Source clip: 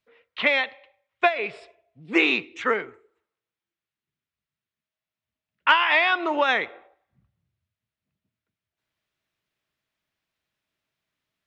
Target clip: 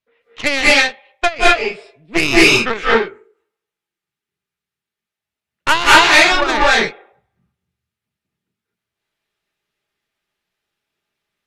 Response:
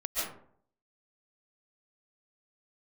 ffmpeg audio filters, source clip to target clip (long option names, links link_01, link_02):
-filter_complex "[0:a]aeval=exprs='0.562*(cos(1*acos(clip(val(0)/0.562,-1,1)))-cos(1*PI/2))+0.0282*(cos(5*acos(clip(val(0)/0.562,-1,1)))-cos(5*PI/2))+0.141*(cos(6*acos(clip(val(0)/0.562,-1,1)))-cos(6*PI/2))+0.0631*(cos(7*acos(clip(val(0)/0.562,-1,1)))-cos(7*PI/2))+0.0355*(cos(8*acos(clip(val(0)/0.562,-1,1)))-cos(8*PI/2))':channel_layout=same[link_01];[1:a]atrim=start_sample=2205,afade=type=out:start_time=0.22:duration=0.01,atrim=end_sample=10143,asetrate=28224,aresample=44100[link_02];[link_01][link_02]afir=irnorm=-1:irlink=0,acontrast=20,volume=-1dB"